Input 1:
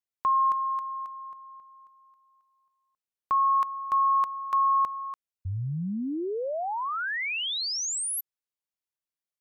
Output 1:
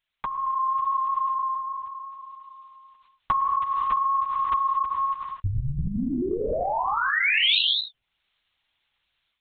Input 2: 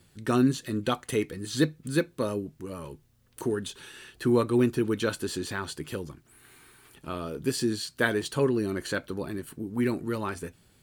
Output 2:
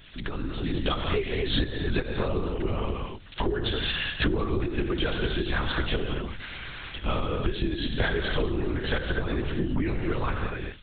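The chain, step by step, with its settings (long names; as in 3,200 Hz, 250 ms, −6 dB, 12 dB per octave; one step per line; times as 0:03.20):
mains-hum notches 50/100/150/200 Hz
reverb whose tail is shaped and stops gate 270 ms flat, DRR 4.5 dB
linear-prediction vocoder at 8 kHz whisper
low-shelf EQ 95 Hz +7.5 dB
downward compressor 16 to 1, threshold −35 dBFS
high-shelf EQ 2,700 Hz +11.5 dB
automatic gain control gain up to 8.5 dB
one half of a high-frequency compander encoder only
level +3.5 dB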